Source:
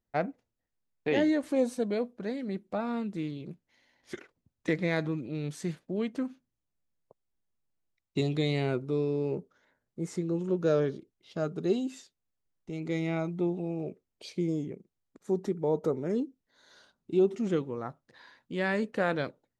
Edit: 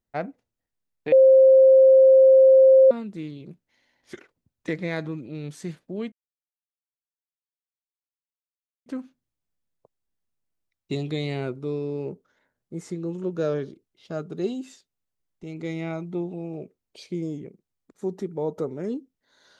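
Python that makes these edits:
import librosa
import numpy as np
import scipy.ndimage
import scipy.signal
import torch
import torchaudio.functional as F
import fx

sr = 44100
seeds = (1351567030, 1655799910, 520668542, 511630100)

y = fx.edit(x, sr, fx.bleep(start_s=1.12, length_s=1.79, hz=529.0, db=-10.0),
    fx.insert_silence(at_s=6.12, length_s=2.74), tone=tone)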